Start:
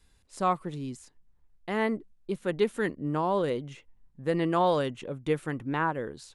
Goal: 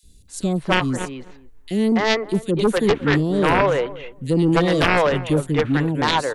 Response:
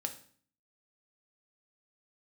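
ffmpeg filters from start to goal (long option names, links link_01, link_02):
-filter_complex "[0:a]bandreject=frequency=5100:width=9.8,acrossover=split=430|3400[link_01][link_02][link_03];[link_01]adelay=30[link_04];[link_02]adelay=280[link_05];[link_04][link_05][link_03]amix=inputs=3:normalize=0,aeval=exprs='0.211*(cos(1*acos(clip(val(0)/0.211,-1,1)))-cos(1*PI/2))+0.0841*(cos(2*acos(clip(val(0)/0.211,-1,1)))-cos(2*PI/2))+0.106*(cos(3*acos(clip(val(0)/0.211,-1,1)))-cos(3*PI/2))+0.00596*(cos(8*acos(clip(val(0)/0.211,-1,1)))-cos(8*PI/2))':channel_layout=same,asplit=2[link_06][link_07];[link_07]adelay=257,lowpass=frequency=890:poles=1,volume=-16dB,asplit=2[link_08][link_09];[link_09]adelay=257,lowpass=frequency=890:poles=1,volume=0.15[link_10];[link_08][link_10]amix=inputs=2:normalize=0[link_11];[link_06][link_11]amix=inputs=2:normalize=0,alimiter=level_in=21.5dB:limit=-1dB:release=50:level=0:latency=1,volume=-1dB"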